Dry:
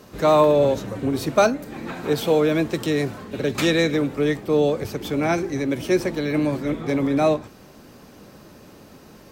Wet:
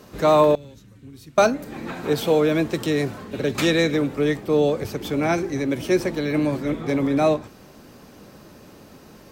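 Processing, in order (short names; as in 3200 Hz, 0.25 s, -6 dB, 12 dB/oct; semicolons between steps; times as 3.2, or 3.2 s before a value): 0.55–1.38 passive tone stack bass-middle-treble 6-0-2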